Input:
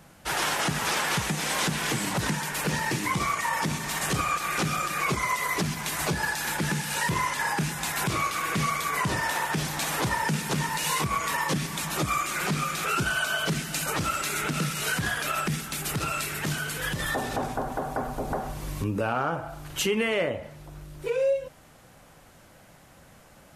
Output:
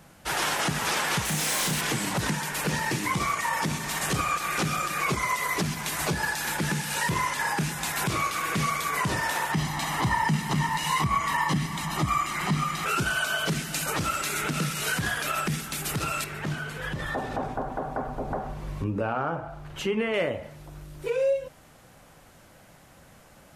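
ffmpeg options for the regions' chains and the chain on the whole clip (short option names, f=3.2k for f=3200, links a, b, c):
-filter_complex "[0:a]asettb=1/sr,asplit=3[a][b][c];[a]atrim=end=1.254[d];[b]atrim=start=1.25:end=1.81,asetpts=PTS-STARTPTS,afade=t=in:d=0.004:c=qsin,afade=t=out:st=0.556:d=0.004:c=qsin,highshelf=f=5.3k:g=8.5,asoftclip=type=hard:threshold=-26dB,asplit=2[e][f];[f]adelay=32,volume=-3dB[g];[e][g]amix=inputs=2:normalize=0,atrim=end_sample=24696[h];[c]atrim=start=1.806[i];[d][h]acrossfade=d=0.004:c1=hsin:c2=qsin[j];[j][i]acrossfade=d=0.004:c1=qsin:c2=hsin,asettb=1/sr,asplit=3[k][l][m];[k]atrim=end=9.524[n];[l]atrim=start=9.52:end=12.86,asetpts=PTS-STARTPTS,afade=t=in:d=0.004:c=qsin,afade=t=out:st=3.336:d=0.004:c=qsin,highshelf=f=5.2k:g=-9,aecho=1:1:1:0.61,atrim=end_sample=147294[o];[m]atrim=start=12.856[p];[n][o]acrossfade=d=0.004:c1=hsin:c2=qsin[q];[q][p]acrossfade=d=0.004:c1=qsin:c2=hsin,asettb=1/sr,asplit=3[r][s][t];[r]atrim=end=16.244[u];[s]atrim=start=16.24:end=20.14,asetpts=PTS-STARTPTS,afade=t=in:d=0.004:c=qsin,afade=t=out:st=3.896:d=0.004:c=qsin,lowpass=f=1.7k:p=1,bandreject=f=60:t=h:w=6,bandreject=f=120:t=h:w=6,bandreject=f=180:t=h:w=6,bandreject=f=240:t=h:w=6,bandreject=f=300:t=h:w=6,bandreject=f=360:t=h:w=6,bandreject=f=420:t=h:w=6,bandreject=f=480:t=h:w=6[v];[t]atrim=start=20.136[w];[u][v]acrossfade=d=0.004:c1=hsin:c2=qsin[x];[x][w]acrossfade=d=0.004:c1=qsin:c2=hsin"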